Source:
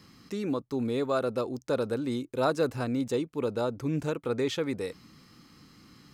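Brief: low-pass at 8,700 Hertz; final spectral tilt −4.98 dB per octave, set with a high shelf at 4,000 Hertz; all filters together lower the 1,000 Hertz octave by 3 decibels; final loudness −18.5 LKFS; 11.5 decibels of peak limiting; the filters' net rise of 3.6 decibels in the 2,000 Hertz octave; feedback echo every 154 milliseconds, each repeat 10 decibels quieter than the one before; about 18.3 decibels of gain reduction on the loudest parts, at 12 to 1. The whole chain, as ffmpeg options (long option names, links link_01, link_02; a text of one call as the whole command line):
ffmpeg -i in.wav -af "lowpass=8700,equalizer=frequency=1000:width_type=o:gain=-7.5,equalizer=frequency=2000:width_type=o:gain=7.5,highshelf=frequency=4000:gain=3.5,acompressor=threshold=-41dB:ratio=12,alimiter=level_in=15dB:limit=-24dB:level=0:latency=1,volume=-15dB,aecho=1:1:154|308|462|616:0.316|0.101|0.0324|0.0104,volume=29.5dB" out.wav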